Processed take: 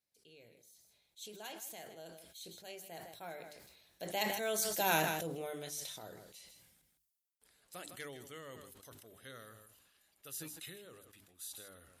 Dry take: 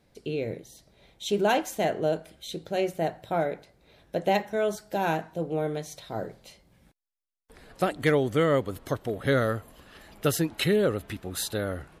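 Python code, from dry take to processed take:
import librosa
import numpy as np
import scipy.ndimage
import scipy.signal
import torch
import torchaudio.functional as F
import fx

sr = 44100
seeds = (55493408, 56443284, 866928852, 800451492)

y = fx.doppler_pass(x, sr, speed_mps=11, closest_m=3.4, pass_at_s=4.88)
y = scipy.signal.sosfilt(scipy.signal.butter(2, 41.0, 'highpass', fs=sr, output='sos'), y)
y = F.preemphasis(torch.from_numpy(y), 0.9).numpy()
y = fx.hum_notches(y, sr, base_hz=50, count=8)
y = y + 10.0 ** (-15.0 / 20.0) * np.pad(y, (int(158 * sr / 1000.0), 0))[:len(y)]
y = fx.sustainer(y, sr, db_per_s=41.0)
y = y * librosa.db_to_amplitude(11.0)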